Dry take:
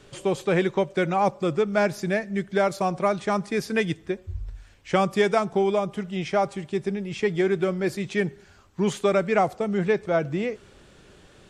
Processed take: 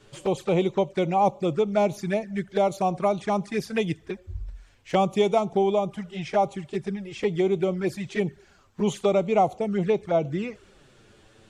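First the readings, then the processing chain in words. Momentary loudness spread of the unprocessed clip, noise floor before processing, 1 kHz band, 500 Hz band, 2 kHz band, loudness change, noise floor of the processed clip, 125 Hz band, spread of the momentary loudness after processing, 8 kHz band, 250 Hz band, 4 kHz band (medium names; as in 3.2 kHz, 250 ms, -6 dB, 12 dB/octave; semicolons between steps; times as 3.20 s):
8 LU, -53 dBFS, +1.0 dB, -0.5 dB, -7.0 dB, -0.5 dB, -57 dBFS, -0.5 dB, 9 LU, -2.5 dB, -0.5 dB, -1.5 dB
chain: dynamic bell 810 Hz, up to +5 dB, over -35 dBFS, Q 2.1; touch-sensitive flanger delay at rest 10.4 ms, full sweep at -19.5 dBFS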